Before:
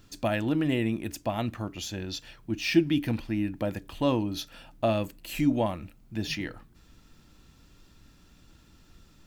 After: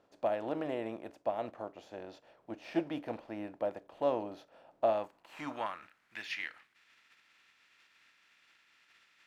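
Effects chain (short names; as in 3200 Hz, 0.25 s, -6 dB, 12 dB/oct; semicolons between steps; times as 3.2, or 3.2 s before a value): spectral contrast lowered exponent 0.66; band-pass sweep 610 Hz -> 2100 Hz, 4.78–6.27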